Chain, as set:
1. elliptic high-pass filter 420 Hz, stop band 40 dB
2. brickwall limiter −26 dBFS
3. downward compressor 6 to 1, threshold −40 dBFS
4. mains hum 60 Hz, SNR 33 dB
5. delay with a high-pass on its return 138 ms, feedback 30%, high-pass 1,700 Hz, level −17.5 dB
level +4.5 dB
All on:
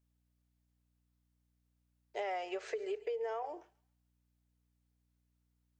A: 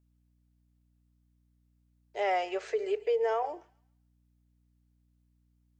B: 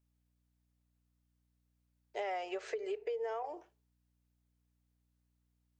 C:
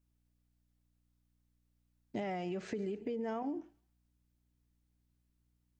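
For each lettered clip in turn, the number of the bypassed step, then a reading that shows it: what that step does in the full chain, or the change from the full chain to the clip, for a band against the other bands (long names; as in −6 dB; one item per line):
3, change in crest factor −3.0 dB
5, echo-to-direct ratio −21.0 dB to none audible
1, 250 Hz band +15.5 dB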